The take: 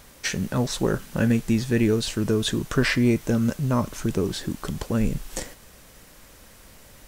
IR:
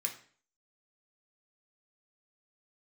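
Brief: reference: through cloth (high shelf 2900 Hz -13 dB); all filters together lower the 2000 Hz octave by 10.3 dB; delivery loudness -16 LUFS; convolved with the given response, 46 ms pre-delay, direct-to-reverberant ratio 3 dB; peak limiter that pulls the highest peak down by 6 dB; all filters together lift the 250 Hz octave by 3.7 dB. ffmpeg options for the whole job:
-filter_complex "[0:a]equalizer=f=250:t=o:g=4.5,equalizer=f=2k:t=o:g=-8.5,alimiter=limit=-13dB:level=0:latency=1,asplit=2[a][b];[1:a]atrim=start_sample=2205,adelay=46[c];[b][c]afir=irnorm=-1:irlink=0,volume=-4.5dB[d];[a][d]amix=inputs=2:normalize=0,highshelf=f=2.9k:g=-13,volume=7dB"

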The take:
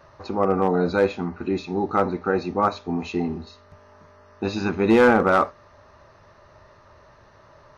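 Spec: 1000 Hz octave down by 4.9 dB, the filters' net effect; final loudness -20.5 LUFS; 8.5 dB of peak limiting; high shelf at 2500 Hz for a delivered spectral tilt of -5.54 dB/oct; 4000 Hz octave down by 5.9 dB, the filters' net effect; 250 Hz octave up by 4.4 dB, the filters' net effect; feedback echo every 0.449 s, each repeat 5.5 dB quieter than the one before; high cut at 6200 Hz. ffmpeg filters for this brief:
-af "lowpass=6.2k,equalizer=f=250:t=o:g=6,equalizer=f=1k:t=o:g=-6.5,highshelf=f=2.5k:g=-3,equalizer=f=4k:t=o:g=-3.5,alimiter=limit=-12.5dB:level=0:latency=1,aecho=1:1:449|898|1347|1796|2245|2694|3143:0.531|0.281|0.149|0.079|0.0419|0.0222|0.0118,volume=3.5dB"

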